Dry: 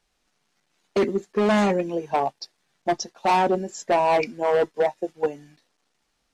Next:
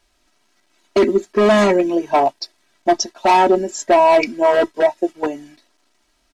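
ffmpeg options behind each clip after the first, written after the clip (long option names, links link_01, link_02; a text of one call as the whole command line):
ffmpeg -i in.wav -af "aecho=1:1:3.1:0.7,alimiter=limit=-13dB:level=0:latency=1,volume=7dB" out.wav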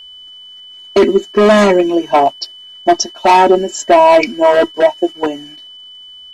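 ffmpeg -i in.wav -af "aeval=exprs='val(0)+0.0126*sin(2*PI*3000*n/s)':channel_layout=same,volume=4.5dB" out.wav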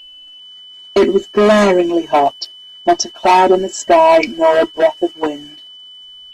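ffmpeg -i in.wav -af "volume=-1.5dB" -ar 48000 -c:a libopus -b:a 20k out.opus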